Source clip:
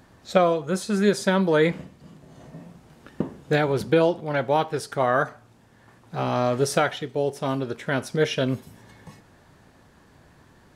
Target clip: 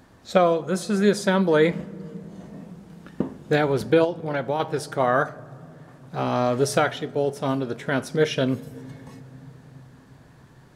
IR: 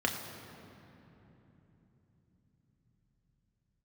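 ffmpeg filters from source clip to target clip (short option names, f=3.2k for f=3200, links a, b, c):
-filter_complex "[0:a]asplit=2[a][b];[1:a]atrim=start_sample=2205,lowpass=2.3k,lowshelf=f=230:g=7.5[c];[b][c]afir=irnorm=-1:irlink=0,volume=-24.5dB[d];[a][d]amix=inputs=2:normalize=0,asettb=1/sr,asplit=3[e][f][g];[e]atrim=end=4.044[h];[f]atrim=start=4.04:end=4.6,asetpts=PTS-STARTPTS,afade=t=in:d=0.004:c=qsin,afade=t=out:st=0.556:d=0.004:c=qsin,acompressor=threshold=-22dB:ratio=4[i];[g]atrim=start=4.596[j];[h][i]acrossfade=d=0.004:c1=hsin:c2=qsin[k];[k][j]acrossfade=d=0.004:c1=qsin:c2=hsin"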